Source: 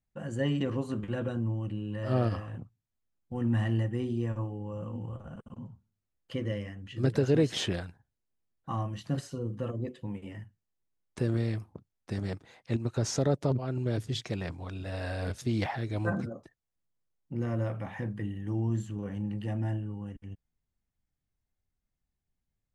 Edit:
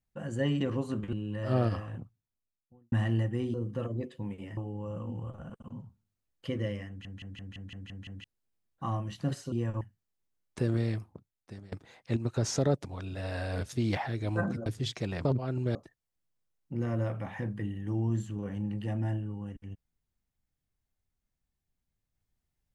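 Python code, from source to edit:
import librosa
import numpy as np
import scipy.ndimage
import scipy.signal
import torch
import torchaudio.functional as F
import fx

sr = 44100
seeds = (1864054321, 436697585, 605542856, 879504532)

y = fx.studio_fade_out(x, sr, start_s=2.53, length_s=0.99)
y = fx.edit(y, sr, fx.cut(start_s=1.13, length_s=0.6),
    fx.swap(start_s=4.14, length_s=0.29, other_s=9.38, other_length_s=1.03),
    fx.stutter_over(start_s=6.74, slice_s=0.17, count=8),
    fx.fade_out_to(start_s=11.53, length_s=0.79, floor_db=-22.5),
    fx.swap(start_s=13.45, length_s=0.5, other_s=14.54, other_length_s=1.81), tone=tone)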